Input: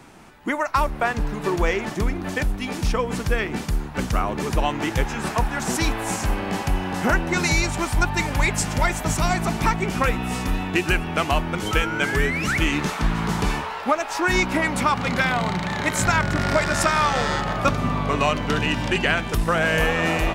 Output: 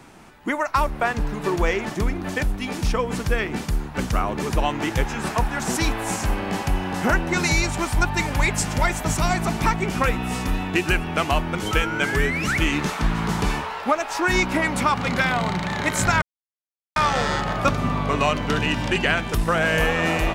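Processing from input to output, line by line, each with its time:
0:16.22–0:16.96: silence

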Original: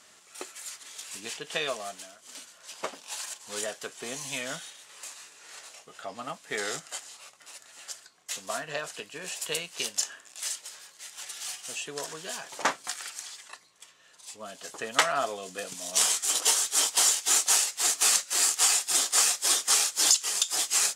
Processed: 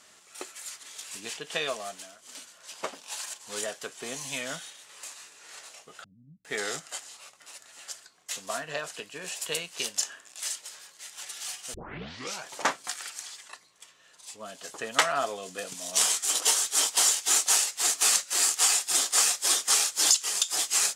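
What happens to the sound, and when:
0:06.04–0:06.45: inverse Chebyshev low-pass filter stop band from 790 Hz, stop band 70 dB
0:11.74: tape start 0.71 s

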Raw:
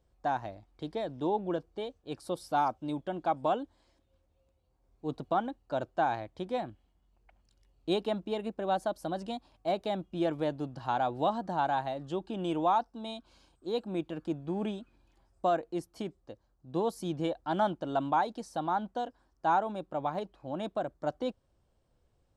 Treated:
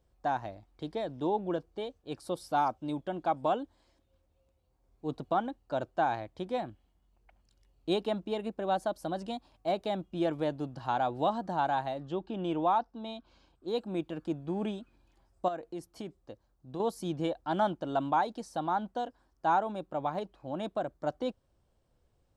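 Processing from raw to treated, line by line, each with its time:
0:12.00–0:13.68: high-frequency loss of the air 110 metres
0:15.48–0:16.80: downward compressor 2.5 to 1, threshold −37 dBFS

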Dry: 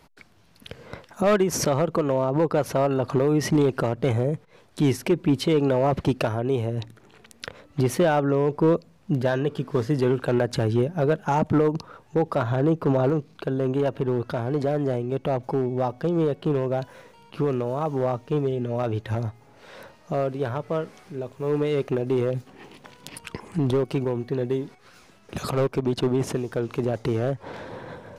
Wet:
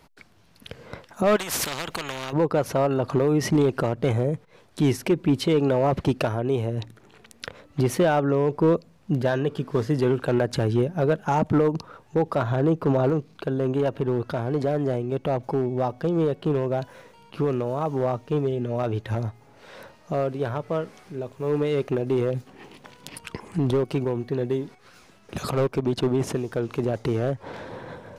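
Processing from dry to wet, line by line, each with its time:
0:01.36–0:02.33: every bin compressed towards the loudest bin 4 to 1

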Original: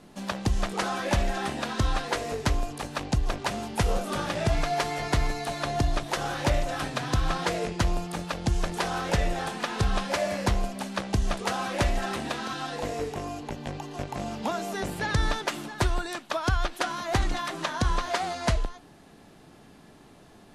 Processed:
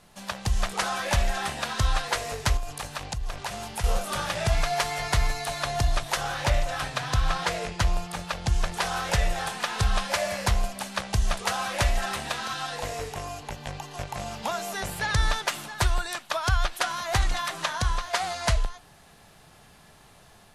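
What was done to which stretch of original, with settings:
0:02.57–0:03.84: downward compressor, threshold −29 dBFS
0:06.21–0:08.82: high-shelf EQ 7,400 Hz −6.5 dB
0:17.72–0:18.13: fade out, to −7 dB
whole clip: parametric band 290 Hz −14.5 dB 1.3 octaves; automatic gain control gain up to 3 dB; high-shelf EQ 9,900 Hz +7 dB

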